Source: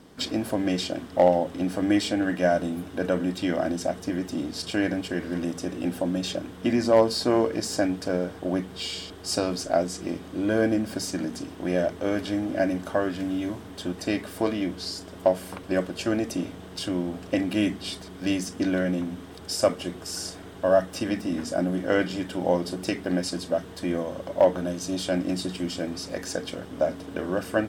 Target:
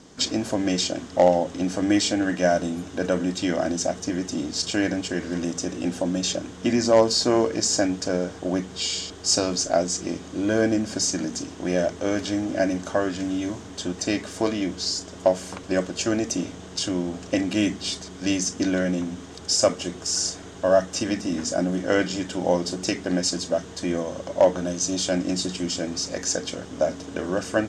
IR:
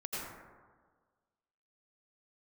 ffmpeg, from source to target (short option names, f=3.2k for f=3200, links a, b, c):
-af "lowpass=f=6.7k:t=q:w=4.4,volume=1.5dB"